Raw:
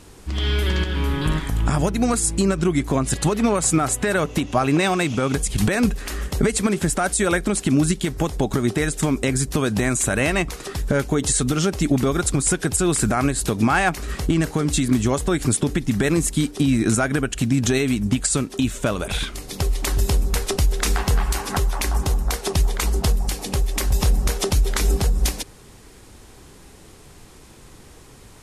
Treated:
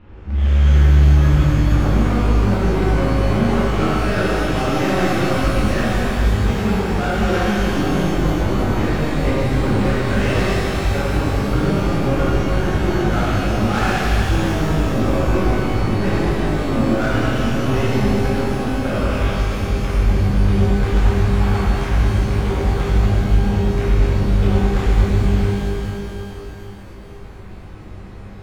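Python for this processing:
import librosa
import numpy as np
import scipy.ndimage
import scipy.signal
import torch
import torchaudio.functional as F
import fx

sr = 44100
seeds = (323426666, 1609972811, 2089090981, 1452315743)

y = scipy.signal.sosfilt(scipy.signal.butter(4, 2600.0, 'lowpass', fs=sr, output='sos'), x)
y = fx.low_shelf(y, sr, hz=110.0, db=8.0)
y = np.clip(y, -10.0 ** (-20.5 / 20.0), 10.0 ** (-20.5 / 20.0))
y = fx.rev_shimmer(y, sr, seeds[0], rt60_s=3.0, semitones=12, shimmer_db=-8, drr_db=-10.5)
y = y * 10.0 ** (-6.0 / 20.0)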